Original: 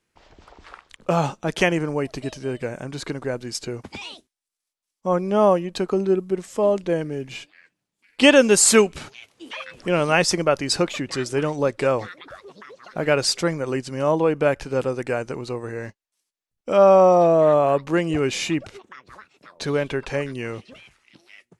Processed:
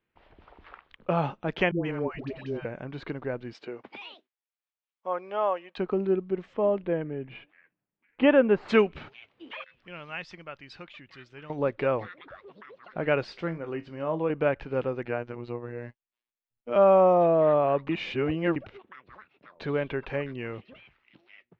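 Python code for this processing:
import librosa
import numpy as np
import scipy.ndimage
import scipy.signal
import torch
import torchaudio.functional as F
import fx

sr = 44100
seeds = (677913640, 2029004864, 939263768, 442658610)

y = fx.dispersion(x, sr, late='highs', ms=139.0, hz=630.0, at=(1.71, 2.65))
y = fx.highpass(y, sr, hz=fx.line((3.53, 270.0), (5.77, 840.0)), slope=12, at=(3.53, 5.77), fade=0.02)
y = fx.lowpass(y, sr, hz=fx.line((6.53, 3100.0), (8.68, 1500.0)), slope=12, at=(6.53, 8.68), fade=0.02)
y = fx.tone_stack(y, sr, knobs='5-5-5', at=(9.64, 11.5))
y = fx.comb_fb(y, sr, f0_hz=55.0, decay_s=0.22, harmonics='all', damping=0.0, mix_pct=70, at=(13.24, 14.3))
y = fx.robotise(y, sr, hz=120.0, at=(15.05, 16.76))
y = fx.edit(y, sr, fx.reverse_span(start_s=17.89, length_s=0.67), tone=tone)
y = scipy.signal.sosfilt(scipy.signal.butter(4, 3200.0, 'lowpass', fs=sr, output='sos'), y)
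y = y * 10.0 ** (-5.5 / 20.0)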